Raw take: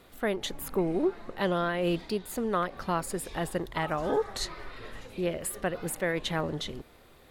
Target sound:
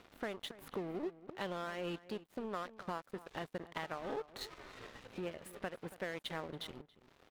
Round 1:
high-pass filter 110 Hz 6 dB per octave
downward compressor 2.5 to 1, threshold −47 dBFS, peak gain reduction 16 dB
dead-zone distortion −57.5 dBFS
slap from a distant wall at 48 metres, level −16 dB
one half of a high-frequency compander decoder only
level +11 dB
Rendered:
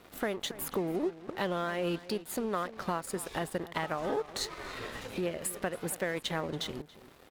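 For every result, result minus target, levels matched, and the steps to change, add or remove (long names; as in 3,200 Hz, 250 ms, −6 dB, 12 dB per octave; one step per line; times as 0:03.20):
8,000 Hz band +9.5 dB; downward compressor: peak gain reduction −7 dB
add after high-pass filter: high shelf with overshoot 4,600 Hz −7.5 dB, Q 1.5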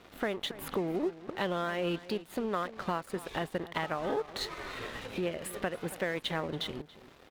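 downward compressor: peak gain reduction −7 dB
change: downward compressor 2.5 to 1, threshold −58.5 dBFS, peak gain reduction 23 dB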